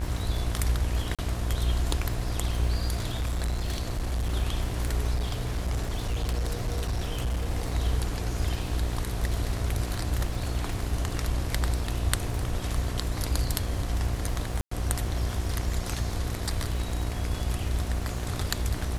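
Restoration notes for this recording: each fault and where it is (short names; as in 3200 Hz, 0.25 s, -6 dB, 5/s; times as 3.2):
buzz 60 Hz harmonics 36 -32 dBFS
crackle 76/s -35 dBFS
1.15–1.19 gap 36 ms
3.17–4.3 clipped -24.5 dBFS
5.14–7.5 clipped -24 dBFS
14.61–14.71 gap 0.104 s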